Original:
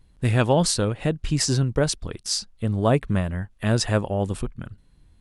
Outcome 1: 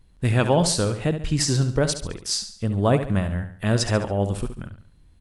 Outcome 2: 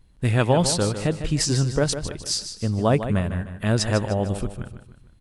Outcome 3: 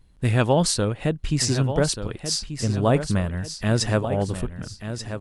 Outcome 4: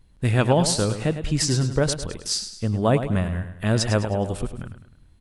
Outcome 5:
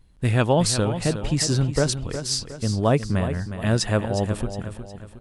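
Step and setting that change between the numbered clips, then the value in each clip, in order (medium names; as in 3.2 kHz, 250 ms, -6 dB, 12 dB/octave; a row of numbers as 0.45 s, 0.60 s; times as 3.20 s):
feedback delay, time: 70 ms, 152 ms, 1185 ms, 104 ms, 362 ms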